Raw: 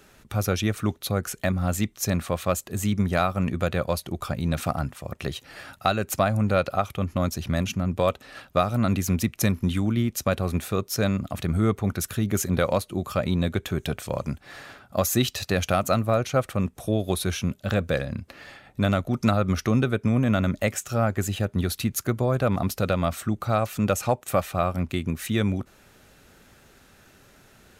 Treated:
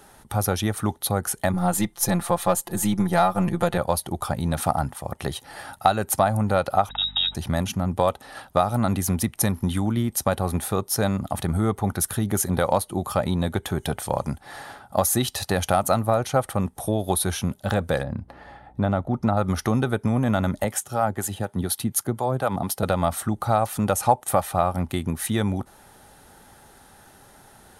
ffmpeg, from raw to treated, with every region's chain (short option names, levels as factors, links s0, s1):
-filter_complex "[0:a]asettb=1/sr,asplit=3[s0][s1][s2];[s0]atrim=end=1.534[s3];[s1]atrim=start=1.53:end=3.78,asetpts=PTS-STARTPTS,afade=t=in:d=0.004:c=qsin,afade=t=out:st=2.246:d=0.004:c=qsin,aeval=exprs='if(lt(val(0),0),0.708*val(0),val(0))':c=same,aecho=1:1:5.8:0.96,atrim=end_sample=99225[s4];[s2]atrim=start=3.776[s5];[s3][s4]acrossfade=d=0.004:c1=hsin:c2=qsin[s6];[s6][s5]acrossfade=d=0.004:c1=qsin:c2=hsin,asettb=1/sr,asplit=3[s7][s8][s9];[s7]atrim=end=6.894[s10];[s8]atrim=start=6.89:end=7.35,asetpts=PTS-STARTPTS,afade=t=in:d=0.004:c=qsin,afade=t=out:st=0.456:d=0.004:c=qsin,lowpass=f=3300:t=q:w=0.5098,lowpass=f=3300:t=q:w=0.6013,lowpass=f=3300:t=q:w=0.9,lowpass=f=3300:t=q:w=2.563,afreqshift=-3900,aeval=exprs='val(0)+0.00631*(sin(2*PI*50*n/s)+sin(2*PI*2*50*n/s)/2+sin(2*PI*3*50*n/s)/3+sin(2*PI*4*50*n/s)/4+sin(2*PI*5*50*n/s)/5)':c=same[s11];[s9]atrim=start=7.346[s12];[s10][s11]acrossfade=d=0.004:c1=hsin:c2=qsin[s13];[s13][s12]acrossfade=d=0.004:c1=qsin:c2=hsin,asettb=1/sr,asplit=3[s14][s15][s16];[s14]atrim=end=18.034[s17];[s15]atrim=start=18.03:end=19.37,asetpts=PTS-STARTPTS,afade=t=in:d=0.004:c=qsin,afade=t=out:st=1.336:d=0.004:c=qsin,lowpass=f=1100:p=1,aeval=exprs='val(0)+0.002*(sin(2*PI*60*n/s)+sin(2*PI*2*60*n/s)/2+sin(2*PI*3*60*n/s)/3+sin(2*PI*4*60*n/s)/4+sin(2*PI*5*60*n/s)/5)':c=same[s18];[s16]atrim=start=19.366[s19];[s17][s18]acrossfade=d=0.004:c1=hsin:c2=qsin[s20];[s20][s19]acrossfade=d=0.004:c1=qsin:c2=hsin,asettb=1/sr,asplit=3[s21][s22][s23];[s21]atrim=end=20.644[s24];[s22]atrim=start=20.64:end=22.83,asetpts=PTS-STARTPTS,afade=t=in:d=0.004:c=qsin,afade=t=out:st=2.186:d=0.004:c=qsin,highpass=100,equalizer=f=3200:w=5.6:g=3.5,acrossover=split=530[s25][s26];[s25]aeval=exprs='val(0)*(1-0.7/2+0.7/2*cos(2*PI*4.1*n/s))':c=same[s27];[s26]aeval=exprs='val(0)*(1-0.7/2-0.7/2*cos(2*PI*4.1*n/s))':c=same[s28];[s27][s28]amix=inputs=2:normalize=0[s29];[s23]atrim=start=22.826[s30];[s24][s29]acrossfade=d=0.004:c1=hsin:c2=qsin[s31];[s31][s30]acrossfade=d=0.004:c1=qsin:c2=hsin,superequalizer=12b=0.562:16b=2.82,acompressor=threshold=0.0891:ratio=2,equalizer=f=840:t=o:w=0.41:g=12.5,volume=1.19"